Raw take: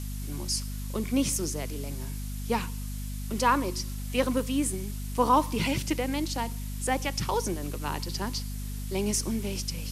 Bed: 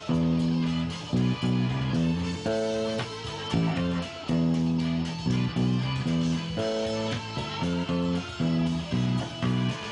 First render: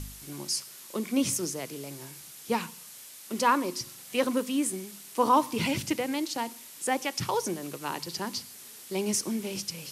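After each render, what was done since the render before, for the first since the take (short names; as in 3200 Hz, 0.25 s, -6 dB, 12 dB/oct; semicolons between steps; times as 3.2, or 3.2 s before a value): de-hum 50 Hz, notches 5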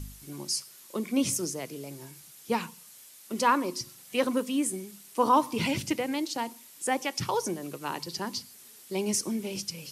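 denoiser 6 dB, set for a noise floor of -47 dBFS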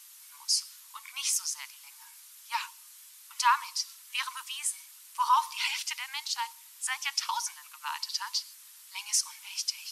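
Chebyshev high-pass 910 Hz, order 6; dynamic EQ 4600 Hz, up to +5 dB, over -45 dBFS, Q 0.74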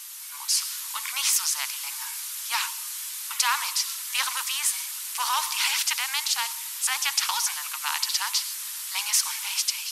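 AGC gain up to 6.5 dB; spectral compressor 2:1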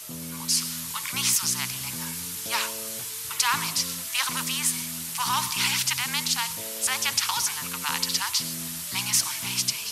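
add bed -14.5 dB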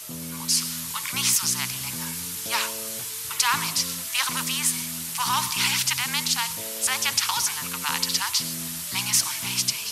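gain +1.5 dB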